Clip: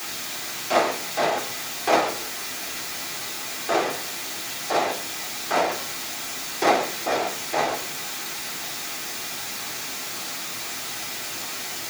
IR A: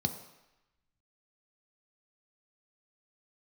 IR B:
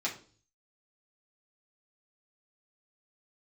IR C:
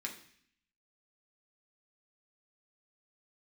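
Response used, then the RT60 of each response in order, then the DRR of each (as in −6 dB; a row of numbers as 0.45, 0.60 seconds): B; 0.95, 0.40, 0.60 seconds; 6.0, −5.0, −0.5 decibels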